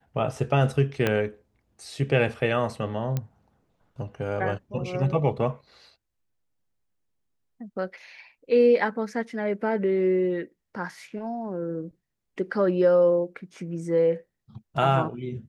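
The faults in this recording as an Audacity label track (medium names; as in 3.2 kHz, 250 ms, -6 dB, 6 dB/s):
1.070000	1.070000	pop -10 dBFS
3.170000	3.170000	pop -15 dBFS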